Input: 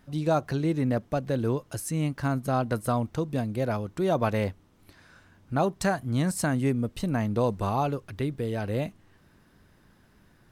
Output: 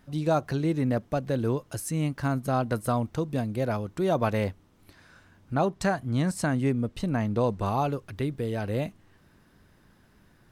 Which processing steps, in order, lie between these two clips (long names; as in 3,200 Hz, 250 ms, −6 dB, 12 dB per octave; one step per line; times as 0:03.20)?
0:05.54–0:07.66: high-shelf EQ 10,000 Hz −11 dB